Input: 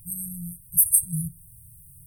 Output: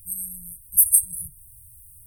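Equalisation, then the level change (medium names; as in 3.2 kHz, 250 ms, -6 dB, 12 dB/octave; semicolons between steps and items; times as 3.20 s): static phaser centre 380 Hz, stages 4; +2.5 dB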